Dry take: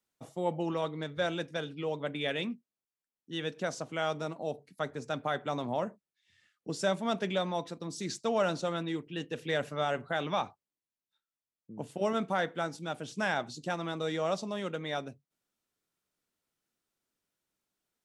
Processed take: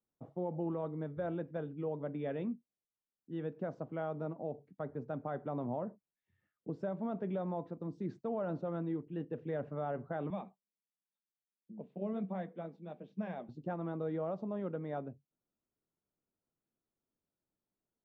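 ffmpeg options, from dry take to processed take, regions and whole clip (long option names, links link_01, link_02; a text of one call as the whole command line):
ffmpeg -i in.wav -filter_complex "[0:a]asettb=1/sr,asplit=3[link_01][link_02][link_03];[link_01]atrim=end=10.304[link_04];[link_02]atrim=start=10.3:end=13.49,asetpts=PTS-STARTPTS,afade=type=in:duration=0.004:curve=qsin,afade=type=out:start_time=3.186:duration=0.004:curve=qsin,flanger=delay=1:depth=7.6:regen=-58:speed=1.4:shape=sinusoidal,highpass=frequency=190:width=0.5412,highpass=frequency=190:width=1.3066,equalizer=frequency=190:width_type=q:width=4:gain=10,equalizer=frequency=290:width_type=q:width=4:gain=-8,equalizer=frequency=860:width_type=q:width=4:gain=-6,equalizer=frequency=1400:width_type=q:width=4:gain=-9,equalizer=frequency=2400:width_type=q:width=4:gain=7,equalizer=frequency=3700:width_type=q:width=4:gain=7,lowpass=frequency=7900:width=0.5412,lowpass=frequency=7900:width=1.3066[link_05];[link_03]atrim=start=13.486[link_06];[link_04][link_05]acrossfade=duration=0.004:curve1=hsin:curve2=qsin[link_07];[link_07][link_06]acrossfade=duration=0.004:curve1=qsin:curve2=hsin,lowpass=1100,tiltshelf=frequency=630:gain=3.5,alimiter=level_in=1dB:limit=-24dB:level=0:latency=1:release=77,volume=-1dB,volume=-3.5dB" out.wav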